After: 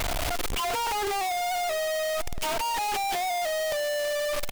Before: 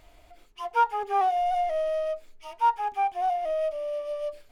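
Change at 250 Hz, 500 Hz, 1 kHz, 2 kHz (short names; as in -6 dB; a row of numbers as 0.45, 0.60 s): n/a, +0.5 dB, -3.5 dB, +10.0 dB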